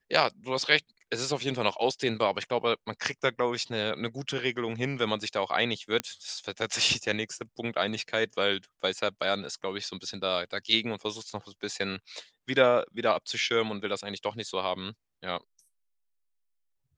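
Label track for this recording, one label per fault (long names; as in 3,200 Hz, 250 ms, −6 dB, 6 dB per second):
6.000000	6.000000	click −13 dBFS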